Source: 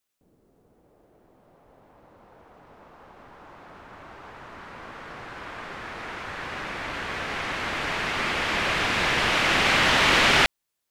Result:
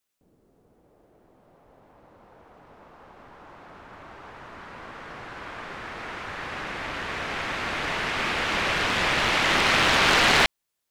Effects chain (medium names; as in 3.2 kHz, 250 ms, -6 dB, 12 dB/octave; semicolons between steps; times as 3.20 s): loudspeaker Doppler distortion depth 0.64 ms